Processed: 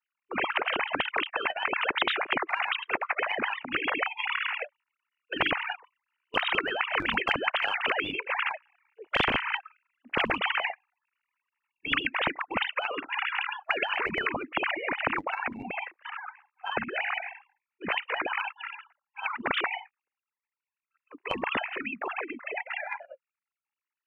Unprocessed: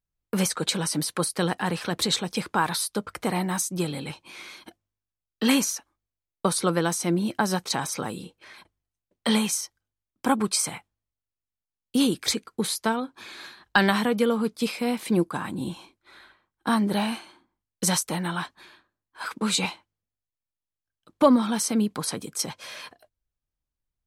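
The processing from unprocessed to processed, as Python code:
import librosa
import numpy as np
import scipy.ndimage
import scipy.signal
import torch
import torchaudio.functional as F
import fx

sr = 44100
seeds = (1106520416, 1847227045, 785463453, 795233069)

y = fx.sine_speech(x, sr)
y = fx.doppler_pass(y, sr, speed_mps=5, closest_m=3.9, pass_at_s=8.52)
y = fx.high_shelf(y, sr, hz=2100.0, db=12.0)
y = fx.formant_shift(y, sr, semitones=-3)
y = fx.spectral_comp(y, sr, ratio=10.0)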